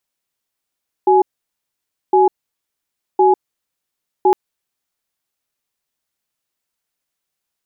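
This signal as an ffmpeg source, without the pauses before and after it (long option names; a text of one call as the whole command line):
ffmpeg -f lavfi -i "aevalsrc='0.282*(sin(2*PI*376*t)+sin(2*PI*838*t))*clip(min(mod(t,1.06),0.15-mod(t,1.06))/0.005,0,1)':duration=3.26:sample_rate=44100" out.wav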